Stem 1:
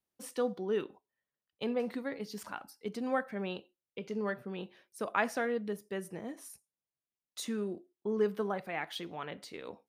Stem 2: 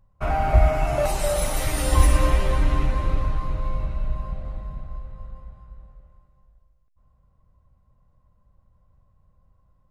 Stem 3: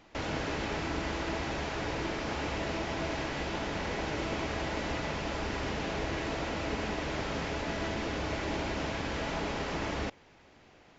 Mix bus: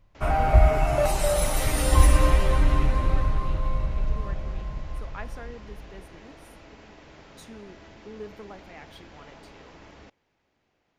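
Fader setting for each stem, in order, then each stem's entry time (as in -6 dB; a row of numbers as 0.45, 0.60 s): -9.5, 0.0, -15.0 dB; 0.00, 0.00, 0.00 s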